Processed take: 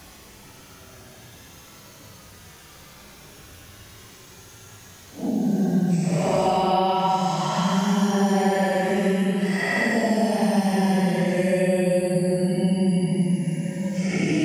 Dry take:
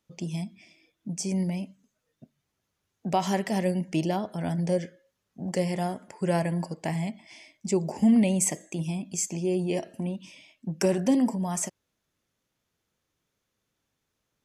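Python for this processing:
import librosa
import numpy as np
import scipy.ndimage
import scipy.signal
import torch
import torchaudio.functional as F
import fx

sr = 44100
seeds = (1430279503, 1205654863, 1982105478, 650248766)

y = fx.paulstretch(x, sr, seeds[0], factor=10.0, window_s=0.1, from_s=2.49)
y = fx.band_squash(y, sr, depth_pct=100)
y = F.gain(torch.from_numpy(y), 4.5).numpy()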